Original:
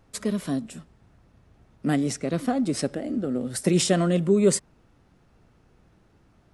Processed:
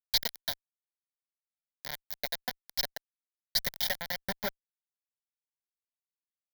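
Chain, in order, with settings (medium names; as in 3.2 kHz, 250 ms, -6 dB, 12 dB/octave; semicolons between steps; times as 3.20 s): peaking EQ 1 kHz +2 dB 2.8 oct; compression 16:1, threshold -24 dBFS, peak gain reduction 12 dB; transient shaper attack +11 dB, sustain -12 dB; band-pass sweep 3.8 kHz -> 390 Hz, 3.67–5.31 s; companded quantiser 2-bit; fuzz box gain 54 dB, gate -56 dBFS; static phaser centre 1.8 kHz, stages 8; trim -7 dB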